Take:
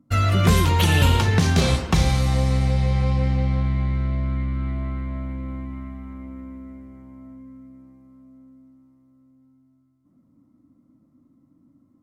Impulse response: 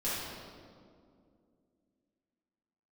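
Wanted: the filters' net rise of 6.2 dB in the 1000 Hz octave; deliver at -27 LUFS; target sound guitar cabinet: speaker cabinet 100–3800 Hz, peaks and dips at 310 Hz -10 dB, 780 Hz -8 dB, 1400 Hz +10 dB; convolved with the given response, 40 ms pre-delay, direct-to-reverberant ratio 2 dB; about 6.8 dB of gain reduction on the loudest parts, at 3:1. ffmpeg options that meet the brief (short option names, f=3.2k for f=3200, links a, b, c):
-filter_complex "[0:a]equalizer=f=1k:t=o:g=5,acompressor=threshold=-21dB:ratio=3,asplit=2[a][b];[1:a]atrim=start_sample=2205,adelay=40[c];[b][c]afir=irnorm=-1:irlink=0,volume=-9dB[d];[a][d]amix=inputs=2:normalize=0,highpass=100,equalizer=f=310:t=q:w=4:g=-10,equalizer=f=780:t=q:w=4:g=-8,equalizer=f=1.4k:t=q:w=4:g=10,lowpass=f=3.8k:w=0.5412,lowpass=f=3.8k:w=1.3066,volume=-2dB"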